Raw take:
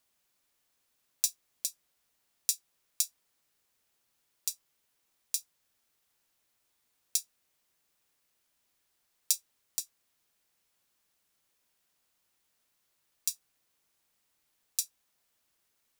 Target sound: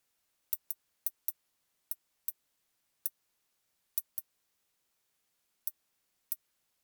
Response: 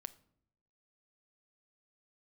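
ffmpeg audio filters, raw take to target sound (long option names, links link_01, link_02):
-filter_complex "[0:a]acrossover=split=950[link_01][link_02];[link_02]asoftclip=type=tanh:threshold=-17dB[link_03];[link_01][link_03]amix=inputs=2:normalize=0,asetrate=103194,aresample=44100,volume=1.5dB"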